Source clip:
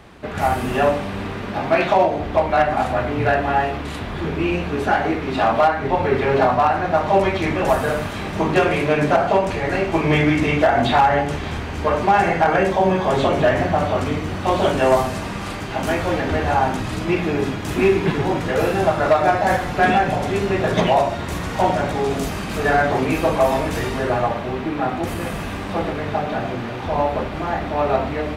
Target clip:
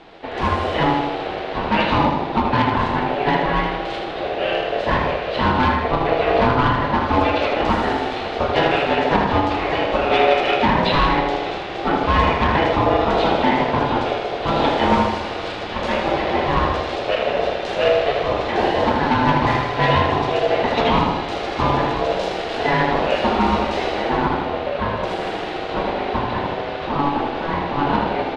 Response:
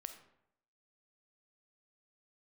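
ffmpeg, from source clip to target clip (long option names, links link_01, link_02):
-filter_complex "[0:a]asplit=2[link_01][link_02];[link_02]asetrate=37084,aresample=44100,atempo=1.18921,volume=-8dB[link_03];[link_01][link_03]amix=inputs=2:normalize=0,asoftclip=type=hard:threshold=-11dB,afreqshift=-300,aeval=exprs='val(0)*sin(2*PI*570*n/s)':channel_layout=same,lowpass=frequency=3900:width_type=q:width=1.9,asplit=2[link_04][link_05];[link_05]aecho=0:1:79|158|237|316|395|474|553:0.501|0.286|0.163|0.0928|0.0529|0.0302|0.0172[link_06];[link_04][link_06]amix=inputs=2:normalize=0,volume=1dB"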